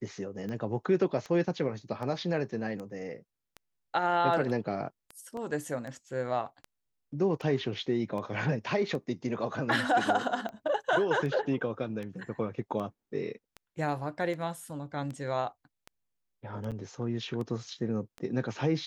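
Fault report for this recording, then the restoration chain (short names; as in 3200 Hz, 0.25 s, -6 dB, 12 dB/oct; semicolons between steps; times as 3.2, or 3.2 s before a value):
tick 78 rpm -27 dBFS
5.37 gap 2.4 ms
16.71–16.72 gap 7.4 ms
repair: de-click; interpolate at 5.37, 2.4 ms; interpolate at 16.71, 7.4 ms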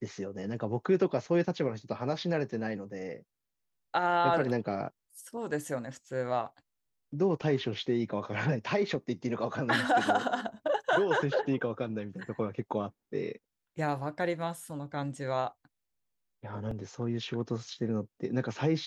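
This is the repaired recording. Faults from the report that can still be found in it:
none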